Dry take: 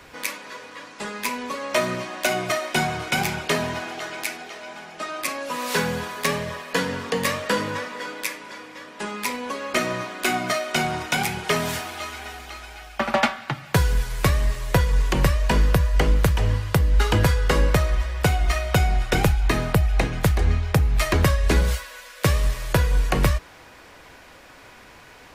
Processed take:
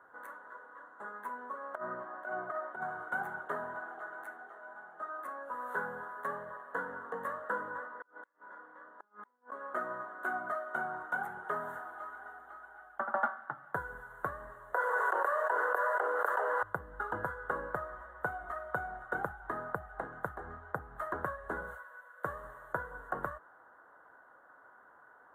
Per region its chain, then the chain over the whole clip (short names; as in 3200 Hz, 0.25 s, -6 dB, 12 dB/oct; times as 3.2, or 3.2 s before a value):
1.75–2.82 LPF 2400 Hz 6 dB/oct + negative-ratio compressor -25 dBFS, ratio -0.5
7.86–9.52 flipped gate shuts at -21 dBFS, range -33 dB + air absorption 69 m
14.73–16.63 steep high-pass 410 Hz + bell 3300 Hz -3 dB 0.31 oct + fast leveller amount 100%
whole clip: elliptic low-pass 1500 Hz, stop band 40 dB; differentiator; gain +8 dB